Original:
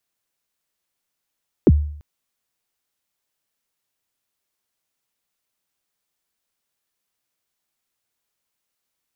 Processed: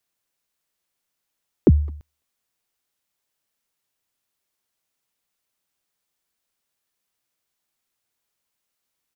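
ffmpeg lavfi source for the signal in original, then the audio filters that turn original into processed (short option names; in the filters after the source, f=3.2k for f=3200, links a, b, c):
-f lavfi -i "aevalsrc='0.531*pow(10,-3*t/0.61)*sin(2*PI*(460*0.04/log(74/460)*(exp(log(74/460)*min(t,0.04)/0.04)-1)+74*max(t-0.04,0)))':d=0.34:s=44100"
-filter_complex "[0:a]asplit=2[a][b];[b]adelay=210,highpass=300,lowpass=3.4k,asoftclip=type=hard:threshold=-14.5dB,volume=-27dB[c];[a][c]amix=inputs=2:normalize=0"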